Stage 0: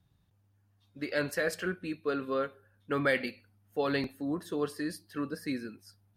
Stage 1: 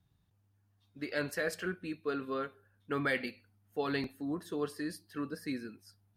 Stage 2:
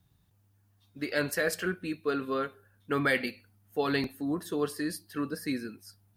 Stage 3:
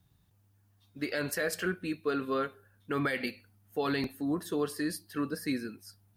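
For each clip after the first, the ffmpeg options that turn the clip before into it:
-af "bandreject=f=550:w=12,volume=0.708"
-af "highshelf=f=8500:g=8,volume=1.78"
-af "alimiter=limit=0.0891:level=0:latency=1:release=88"

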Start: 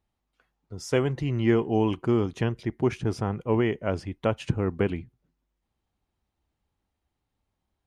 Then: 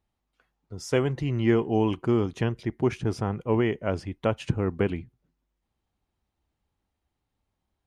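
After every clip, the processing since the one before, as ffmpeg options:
-af anull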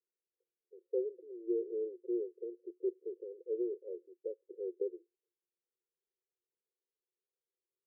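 -af "asuperpass=centerf=430:order=12:qfactor=2.4,volume=0.376"

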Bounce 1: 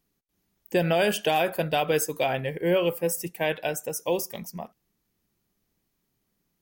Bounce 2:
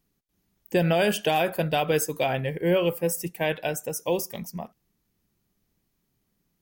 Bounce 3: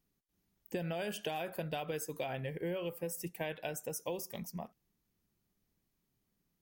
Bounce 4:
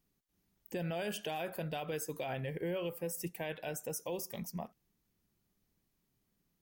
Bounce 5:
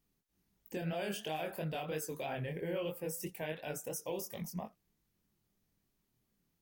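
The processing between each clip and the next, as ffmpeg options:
-af "bass=f=250:g=4,treble=f=4000:g=0"
-af "acompressor=threshold=0.0398:ratio=6,volume=0.447"
-af "alimiter=level_in=2.11:limit=0.0631:level=0:latency=1:release=29,volume=0.473,volume=1.19"
-af "flanger=delay=19:depth=6.9:speed=3,volume=1.33"

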